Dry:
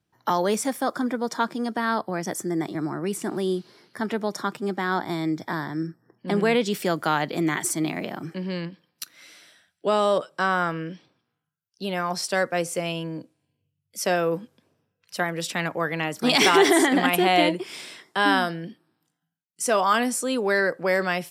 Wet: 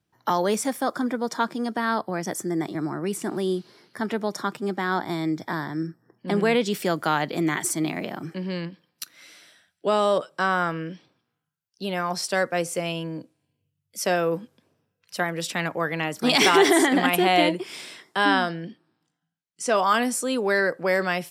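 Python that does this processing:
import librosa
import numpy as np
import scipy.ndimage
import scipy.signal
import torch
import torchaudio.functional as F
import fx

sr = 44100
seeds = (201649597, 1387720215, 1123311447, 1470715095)

y = fx.lowpass(x, sr, hz=7100.0, slope=12, at=(18.25, 19.76))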